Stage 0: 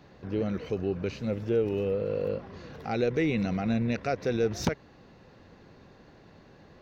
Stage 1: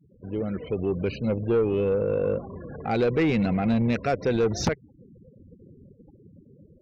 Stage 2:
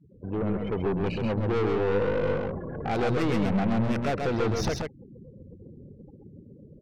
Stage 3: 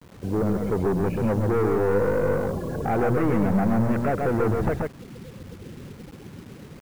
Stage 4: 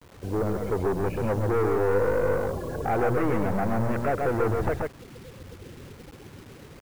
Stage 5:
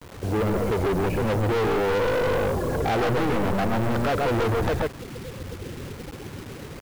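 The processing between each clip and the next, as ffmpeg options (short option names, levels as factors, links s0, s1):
-af "afftfilt=real='re*gte(hypot(re,im),0.00891)':imag='im*gte(hypot(re,im),0.00891)':win_size=1024:overlap=0.75,dynaudnorm=f=510:g=3:m=2.11,asoftclip=type=tanh:threshold=0.158"
-filter_complex "[0:a]acrossover=split=1100[s0][s1];[s1]adynamicsmooth=sensitivity=1.5:basefreq=4300[s2];[s0][s2]amix=inputs=2:normalize=0,aeval=exprs='(tanh(25.1*val(0)+0.4)-tanh(0.4))/25.1':c=same,aecho=1:1:133:0.631,volume=1.5"
-filter_complex "[0:a]lowpass=f=1900:w=0.5412,lowpass=f=1900:w=1.3066,asplit=2[s0][s1];[s1]alimiter=limit=0.0631:level=0:latency=1:release=346,volume=1.06[s2];[s0][s2]amix=inputs=2:normalize=0,acrusher=bits=7:mix=0:aa=0.000001"
-af "equalizer=f=190:t=o:w=1.1:g=-8.5"
-af "asoftclip=type=hard:threshold=0.0355,volume=2.51"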